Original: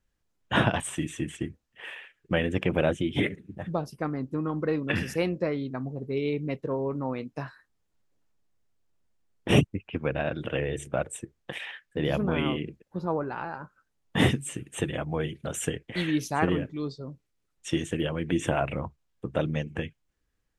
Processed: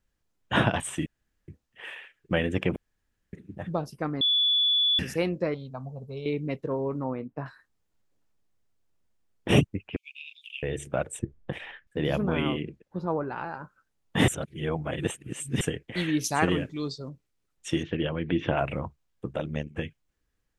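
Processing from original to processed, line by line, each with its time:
1.06–1.48 room tone
2.76–3.33 room tone
4.21–4.99 bleep 3440 Hz -20 dBFS
5.54–6.26 fixed phaser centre 790 Hz, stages 4
7.04–7.46 LPF 1500 Hz
9.96–10.63 steep high-pass 2400 Hz 96 dB/oct
11.19–11.87 tilt -3.5 dB/oct
12.62–13.36 high shelf 6700 Hz -8 dB
14.28–15.61 reverse
16.24–17.09 bell 7300 Hz +10 dB 2.7 oct
17.83–18.58 steep low-pass 4700 Hz 48 dB/oct
19.33–19.78 AM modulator 74 Hz, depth 70%

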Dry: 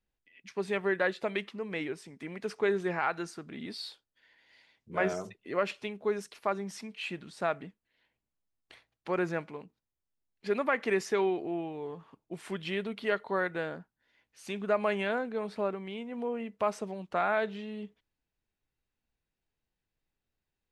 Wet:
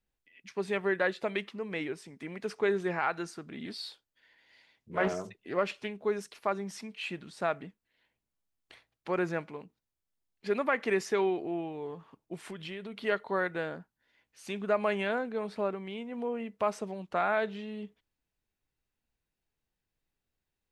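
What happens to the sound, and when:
3.65–6.01 Doppler distortion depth 0.3 ms
12.36–13.02 compressor, threshold -37 dBFS

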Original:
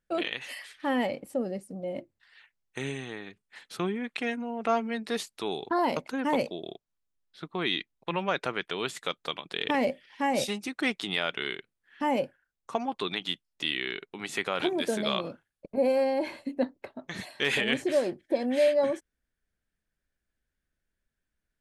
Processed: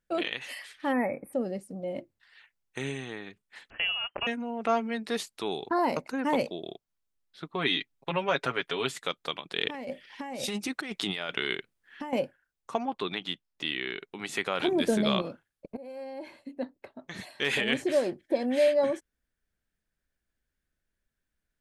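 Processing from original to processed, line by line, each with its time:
0.92–1.33 spectral delete 2600–8400 Hz
3.7–4.27 inverted band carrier 3100 Hz
5.68–6.27 bell 3300 Hz -13 dB 0.23 oct
7.54–8.95 comb 7.3 ms
9.57–12.13 negative-ratio compressor -34 dBFS
12.79–13.98 high shelf 4900 Hz -8.5 dB
14.68–15.22 low shelf 250 Hz +11.5 dB
15.77–17.77 fade in, from -23 dB

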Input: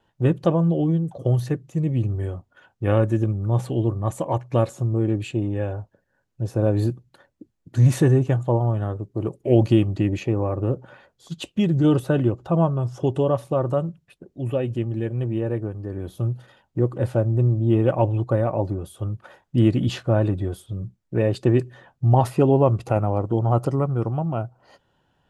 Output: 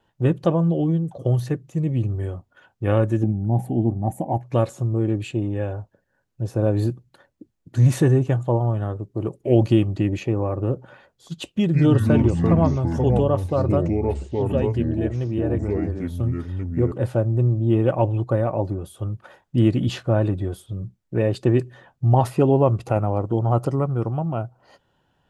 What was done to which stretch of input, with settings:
3.23–4.43 EQ curve 140 Hz 0 dB, 230 Hz +8 dB, 520 Hz -8 dB, 780 Hz +8 dB, 1100 Hz -20 dB, 1900 Hz -8 dB, 4100 Hz -19 dB, 7400 Hz -10 dB, 11000 Hz +1 dB
11.51–16.92 echoes that change speed 0.144 s, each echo -5 st, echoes 2

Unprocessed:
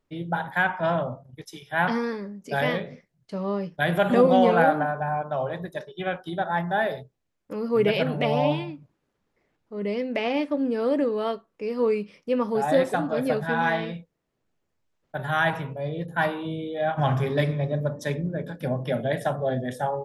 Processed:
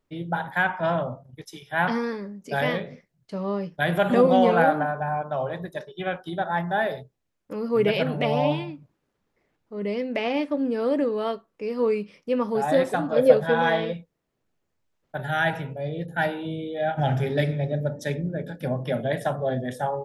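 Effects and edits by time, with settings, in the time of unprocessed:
13.16–13.93 small resonant body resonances 520/3300 Hz, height 15 dB
15.21–18.63 Butterworth band-stop 1100 Hz, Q 2.9

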